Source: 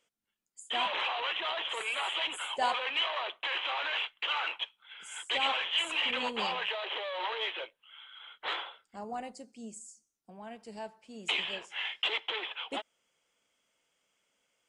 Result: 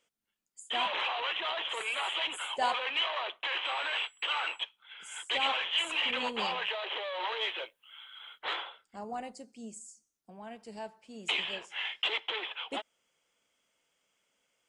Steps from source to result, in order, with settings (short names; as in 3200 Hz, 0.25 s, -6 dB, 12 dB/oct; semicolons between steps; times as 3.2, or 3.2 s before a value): 3.64–4.62 whine 7800 Hz -62 dBFS; 7.27–8.39 high shelf 7800 Hz +11.5 dB